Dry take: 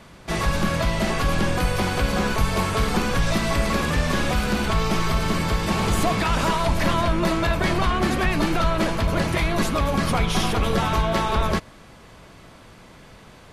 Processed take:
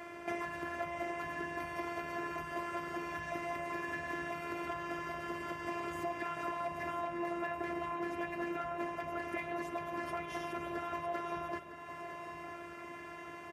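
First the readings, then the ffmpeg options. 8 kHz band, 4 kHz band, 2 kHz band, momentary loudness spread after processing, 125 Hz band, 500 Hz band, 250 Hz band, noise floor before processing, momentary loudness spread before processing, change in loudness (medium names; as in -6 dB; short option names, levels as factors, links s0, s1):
-25.5 dB, -25.0 dB, -14.0 dB, 7 LU, -29.0 dB, -14.5 dB, -17.5 dB, -47 dBFS, 2 LU, -17.0 dB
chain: -filter_complex "[0:a]equalizer=f=125:t=o:w=1:g=-6,equalizer=f=500:t=o:w=1:g=7,equalizer=f=2000:t=o:w=1:g=7,equalizer=f=4000:t=o:w=1:g=-12,afftfilt=real='hypot(re,im)*cos(PI*b)':imag='0':win_size=512:overlap=0.75,acompressor=threshold=0.0112:ratio=4,equalizer=f=9700:w=0.95:g=-9,asplit=2[s0][s1];[s1]aecho=0:1:956|1912|2868|3824|4780:0.316|0.145|0.0669|0.0308|0.0142[s2];[s0][s2]amix=inputs=2:normalize=0,tremolo=f=160:d=0.261,highpass=f=80:w=0.5412,highpass=f=80:w=1.3066,asplit=2[s3][s4];[s4]aecho=0:1:49|147:0.119|0.112[s5];[s3][s5]amix=inputs=2:normalize=0,volume=1.5"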